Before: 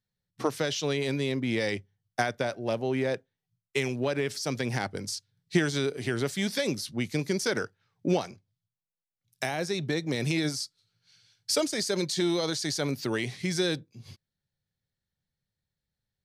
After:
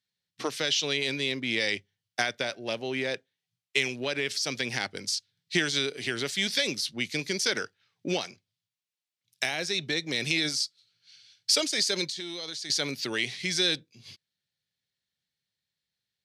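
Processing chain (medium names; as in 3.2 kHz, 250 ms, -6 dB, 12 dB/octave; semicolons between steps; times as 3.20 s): frequency weighting D; 12.07–12.70 s: compression 4:1, threshold -32 dBFS, peak gain reduction 11 dB; trim -3.5 dB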